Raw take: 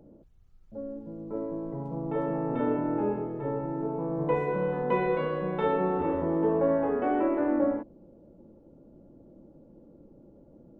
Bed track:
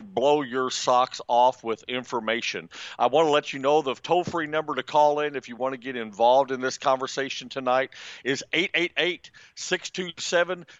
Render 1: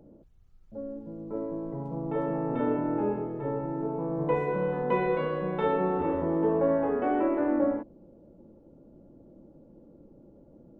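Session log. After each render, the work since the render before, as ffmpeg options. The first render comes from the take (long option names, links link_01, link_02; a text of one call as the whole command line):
ffmpeg -i in.wav -af anull out.wav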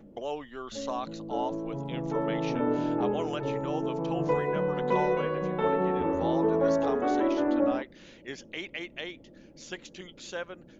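ffmpeg -i in.wav -i bed.wav -filter_complex "[1:a]volume=-14dB[link_01];[0:a][link_01]amix=inputs=2:normalize=0" out.wav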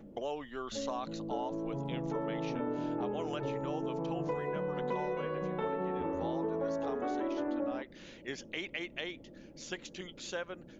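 ffmpeg -i in.wav -af "acompressor=threshold=-33dB:ratio=4" out.wav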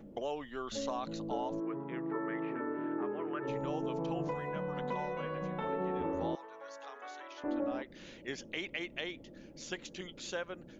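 ffmpeg -i in.wav -filter_complex "[0:a]asplit=3[link_01][link_02][link_03];[link_01]afade=type=out:start_time=1.59:duration=0.02[link_04];[link_02]highpass=240,equalizer=frequency=250:width_type=q:width=4:gain=-4,equalizer=frequency=360:width_type=q:width=4:gain=7,equalizer=frequency=520:width_type=q:width=4:gain=-9,equalizer=frequency=760:width_type=q:width=4:gain=-9,equalizer=frequency=1200:width_type=q:width=4:gain=5,equalizer=frequency=1800:width_type=q:width=4:gain=8,lowpass=frequency=2100:width=0.5412,lowpass=frequency=2100:width=1.3066,afade=type=in:start_time=1.59:duration=0.02,afade=type=out:start_time=3.47:duration=0.02[link_05];[link_03]afade=type=in:start_time=3.47:duration=0.02[link_06];[link_04][link_05][link_06]amix=inputs=3:normalize=0,asettb=1/sr,asplit=3[link_07][link_08][link_09];[link_07]atrim=end=4.284[link_10];[link_08]atrim=start=4.28:end=5.68,asetpts=PTS-STARTPTS,afade=type=in:duration=0.004:curve=qsin,afade=type=out:start_time=1.396:duration=0.004:curve=qsin,equalizer=frequency=400:width_type=o:width=0.34:gain=-12.5[link_11];[link_09]atrim=start=5.676[link_12];[link_10][link_11]acrossfade=duration=0.004:curve1=hsin:curve2=qsin[link_13];[link_13][link_12]acrossfade=duration=0.004:curve1=qsin:curve2=hsin,asettb=1/sr,asplit=3[link_14][link_15][link_16];[link_14]atrim=end=6.354[link_17];[link_15]atrim=start=6.35:end=7.44,asetpts=PTS-STARTPTS,afade=type=in:duration=0.004:curve=qsin,afade=type=out:start_time=1.086:duration=0.004:curve=qsin,highpass=1300[link_18];[link_16]atrim=start=7.436[link_19];[link_17][link_18]acrossfade=duration=0.004:curve1=hsin:curve2=qsin[link_20];[link_20][link_19]acrossfade=duration=0.004:curve1=qsin:curve2=hsin" out.wav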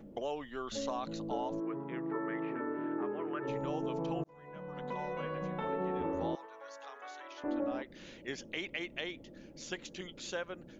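ffmpeg -i in.wav -filter_complex "[0:a]asettb=1/sr,asplit=3[link_01][link_02][link_03];[link_01]atrim=end=6.464[link_04];[link_02]atrim=start=6.46:end=7.25,asetpts=PTS-STARTPTS,afade=type=in:duration=0.004:curve=qsin,afade=type=out:start_time=0.786:duration=0.004:curve=qsin,lowshelf=frequency=230:gain=-10[link_05];[link_03]atrim=start=7.246[link_06];[link_04][link_05]acrossfade=duration=0.004:curve1=hsin:curve2=qsin[link_07];[link_07][link_06]acrossfade=duration=0.004:curve1=qsin:curve2=hsin,asplit=2[link_08][link_09];[link_08]atrim=end=4.24,asetpts=PTS-STARTPTS,afade=type=out:start_time=4.236:duration=0.004:curve=hsin[link_10];[link_09]atrim=start=4.24,asetpts=PTS-STARTPTS,afade=type=in:duration=0.95[link_11];[link_10][link_11]concat=n=2:v=0:a=1" out.wav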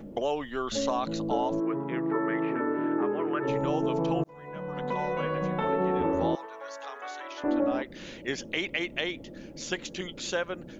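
ffmpeg -i in.wav -af "volume=8.5dB" out.wav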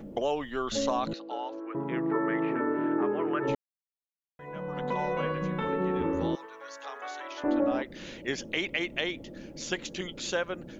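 ffmpeg -i in.wav -filter_complex "[0:a]asettb=1/sr,asplit=3[link_01][link_02][link_03];[link_01]atrim=end=1.134[link_04];[link_02]atrim=start=1.13:end=1.75,asetpts=PTS-STARTPTS,afade=type=in:duration=0.004:curve=qsin,afade=type=out:start_time=0.616:duration=0.004:curve=qsin,highpass=frequency=420:width=0.5412,highpass=frequency=420:width=1.3066,equalizer=frequency=440:width_type=q:width=4:gain=-8,equalizer=frequency=640:width_type=q:width=4:gain=-10,equalizer=frequency=1000:width_type=q:width=4:gain=-8,equalizer=frequency=2000:width_type=q:width=4:gain=-4,equalizer=frequency=3400:width_type=q:width=4:gain=-4,lowpass=frequency=4400:width=0.5412,lowpass=frequency=4400:width=1.3066[link_05];[link_03]atrim=start=1.746[link_06];[link_04][link_05]acrossfade=duration=0.004:curve1=hsin:curve2=qsin[link_07];[link_07][link_06]acrossfade=duration=0.004:curve1=qsin:curve2=hsin,asettb=1/sr,asplit=3[link_08][link_09][link_10];[link_08]atrim=end=5.324[link_11];[link_09]atrim=start=5.32:end=6.85,asetpts=PTS-STARTPTS,afade=type=in:duration=0.004:curve=qsin,afade=type=out:start_time=1.526:duration=0.004:curve=qsin,equalizer=frequency=710:width=2.2:gain=-11.5[link_12];[link_10]atrim=start=6.846[link_13];[link_11][link_12]acrossfade=duration=0.004:curve1=hsin:curve2=qsin[link_14];[link_14][link_13]acrossfade=duration=0.004:curve1=qsin:curve2=hsin,asplit=3[link_15][link_16][link_17];[link_15]atrim=end=3.55,asetpts=PTS-STARTPTS,afade=type=out:start_time=3.546:duration=0.004:curve=hsin[link_18];[link_16]atrim=start=3.55:end=4.39,asetpts=PTS-STARTPTS,volume=0[link_19];[link_17]atrim=start=4.39,asetpts=PTS-STARTPTS,afade=type=in:duration=0.004:curve=hsin[link_20];[link_18][link_19][link_20]concat=n=3:v=0:a=1" out.wav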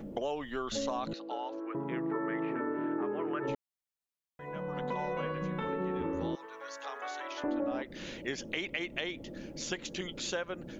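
ffmpeg -i in.wav -af "acompressor=threshold=-35dB:ratio=2" out.wav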